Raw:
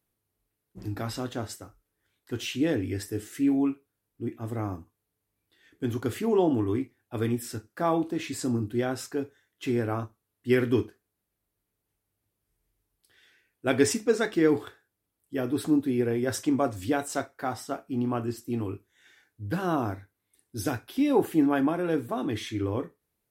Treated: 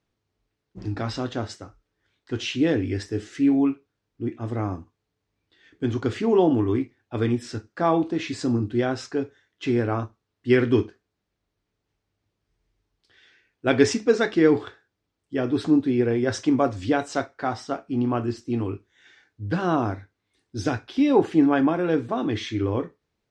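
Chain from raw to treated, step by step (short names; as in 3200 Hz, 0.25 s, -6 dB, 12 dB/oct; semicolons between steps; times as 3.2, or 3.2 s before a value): LPF 6100 Hz 24 dB/oct; gain +4.5 dB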